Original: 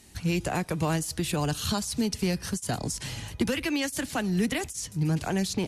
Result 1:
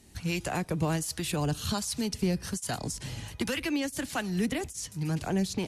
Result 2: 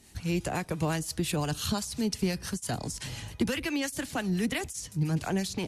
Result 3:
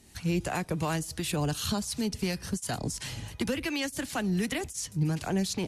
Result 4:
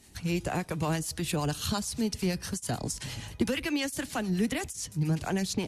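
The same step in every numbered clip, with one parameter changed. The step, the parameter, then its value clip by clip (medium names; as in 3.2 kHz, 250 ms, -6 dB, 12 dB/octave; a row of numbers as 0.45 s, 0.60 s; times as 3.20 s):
harmonic tremolo, rate: 1.3 Hz, 5.8 Hz, 2.8 Hz, 8.8 Hz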